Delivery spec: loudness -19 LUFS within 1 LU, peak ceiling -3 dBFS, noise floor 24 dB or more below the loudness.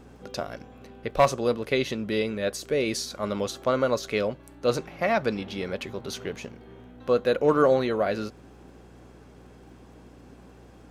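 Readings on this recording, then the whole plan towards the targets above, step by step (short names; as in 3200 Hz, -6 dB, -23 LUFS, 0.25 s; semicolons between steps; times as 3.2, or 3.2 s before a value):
ticks 19/s; hum 60 Hz; harmonics up to 180 Hz; hum level -50 dBFS; loudness -26.5 LUFS; peak -9.5 dBFS; loudness target -19.0 LUFS
-> de-click; de-hum 60 Hz, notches 3; gain +7.5 dB; limiter -3 dBFS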